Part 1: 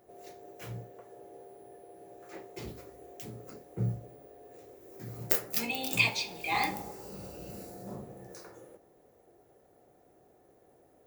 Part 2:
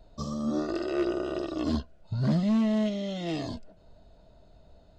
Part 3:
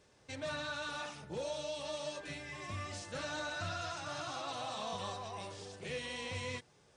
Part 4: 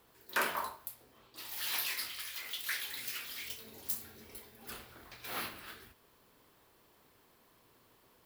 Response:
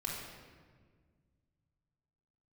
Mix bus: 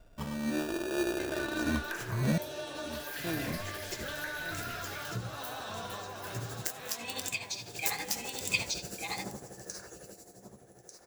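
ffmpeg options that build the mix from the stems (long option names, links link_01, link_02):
-filter_complex "[0:a]tremolo=f=12:d=0.77,equalizer=frequency=7000:width=0.69:gain=15,adelay=1350,volume=2dB,asplit=2[link_01][link_02];[link_02]volume=-9.5dB[link_03];[1:a]acrusher=samples=21:mix=1:aa=0.000001,volume=-3.5dB,asplit=3[link_04][link_05][link_06];[link_04]atrim=end=2.38,asetpts=PTS-STARTPTS,afade=type=out:start_time=2.376:duration=0.004:curve=hsin[link_07];[link_05]atrim=start=2.38:end=3.24,asetpts=PTS-STARTPTS,volume=0[link_08];[link_06]atrim=start=3.24,asetpts=PTS-STARTPTS,afade=type=in:duration=0.004:curve=hsin[link_09];[link_07][link_08][link_09]concat=n=3:v=0:a=1,asplit=2[link_10][link_11];[link_11]volume=-13dB[link_12];[2:a]adelay=900,volume=-1.5dB,asplit=2[link_13][link_14];[link_14]volume=-6.5dB[link_15];[3:a]acompressor=threshold=-39dB:ratio=6,adelay=1550,volume=-2dB[link_16];[link_01][link_13][link_16]amix=inputs=3:normalize=0,equalizer=frequency=1600:width_type=o:width=0.27:gain=12,acompressor=threshold=-34dB:ratio=6,volume=0dB[link_17];[link_03][link_12][link_15]amix=inputs=3:normalize=0,aecho=0:1:1193:1[link_18];[link_10][link_17][link_18]amix=inputs=3:normalize=0"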